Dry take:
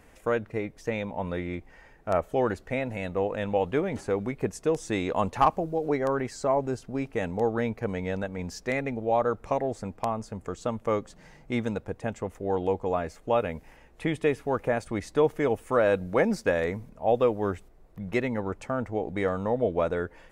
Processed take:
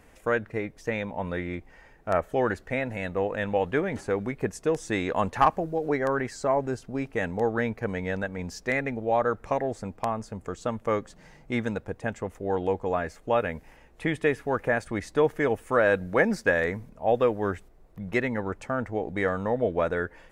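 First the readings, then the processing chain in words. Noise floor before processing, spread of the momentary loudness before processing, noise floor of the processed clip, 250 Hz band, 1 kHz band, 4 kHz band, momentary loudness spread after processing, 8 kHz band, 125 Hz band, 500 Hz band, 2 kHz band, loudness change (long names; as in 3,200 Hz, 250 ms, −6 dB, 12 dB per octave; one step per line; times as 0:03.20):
−55 dBFS, 9 LU, −55 dBFS, 0.0 dB, +1.0 dB, +0.5 dB, 9 LU, 0.0 dB, 0.0 dB, 0.0 dB, +5.5 dB, +0.5 dB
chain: dynamic equaliser 1,700 Hz, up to +8 dB, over −49 dBFS, Q 2.7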